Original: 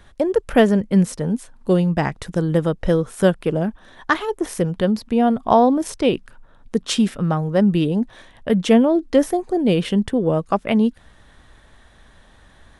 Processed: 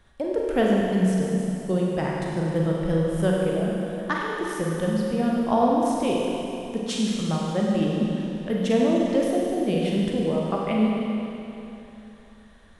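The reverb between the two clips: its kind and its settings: Schroeder reverb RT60 3 s, combs from 33 ms, DRR -3 dB; trim -9.5 dB

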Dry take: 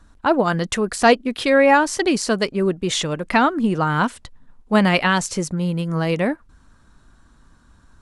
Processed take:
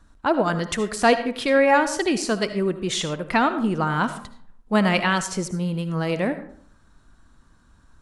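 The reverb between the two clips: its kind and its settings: algorithmic reverb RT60 0.59 s, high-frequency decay 0.55×, pre-delay 35 ms, DRR 10.5 dB; trim -3.5 dB

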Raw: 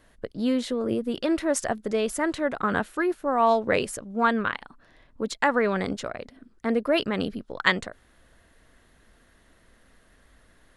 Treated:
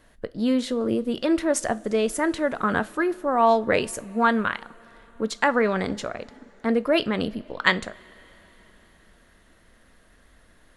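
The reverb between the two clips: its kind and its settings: two-slope reverb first 0.3 s, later 4.6 s, from -21 dB, DRR 14 dB; trim +1.5 dB

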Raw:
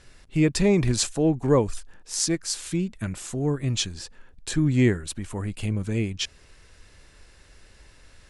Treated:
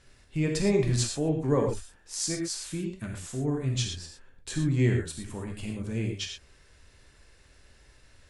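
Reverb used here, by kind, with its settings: gated-style reverb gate 140 ms flat, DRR 1.5 dB; trim -7 dB

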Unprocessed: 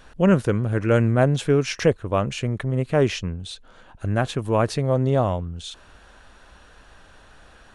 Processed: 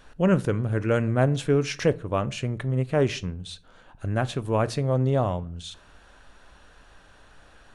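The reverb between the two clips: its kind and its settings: simulated room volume 320 m³, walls furnished, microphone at 0.3 m; trim -3.5 dB

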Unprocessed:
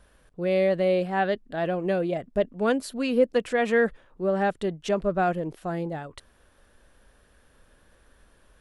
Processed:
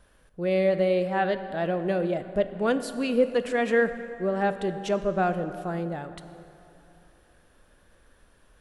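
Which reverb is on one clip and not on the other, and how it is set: plate-style reverb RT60 3.1 s, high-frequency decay 0.6×, DRR 10 dB; trim -1 dB

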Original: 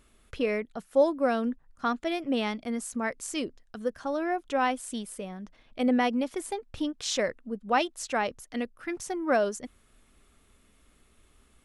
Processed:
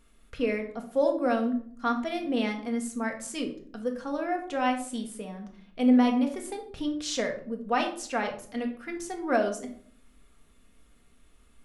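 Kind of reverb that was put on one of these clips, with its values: simulated room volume 670 m³, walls furnished, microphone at 1.7 m; trim -3 dB

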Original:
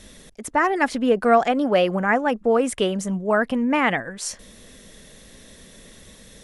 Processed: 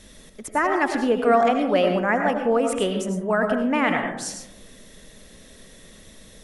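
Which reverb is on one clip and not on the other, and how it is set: algorithmic reverb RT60 0.85 s, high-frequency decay 0.3×, pre-delay 60 ms, DRR 4 dB; trim -2.5 dB

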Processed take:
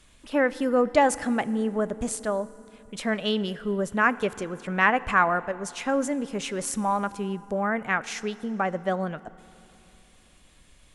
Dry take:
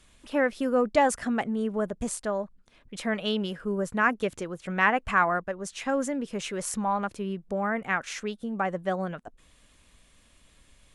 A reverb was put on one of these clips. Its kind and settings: FDN reverb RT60 3.2 s, low-frequency decay 1.25×, high-frequency decay 0.7×, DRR 16.5 dB; trim +2 dB

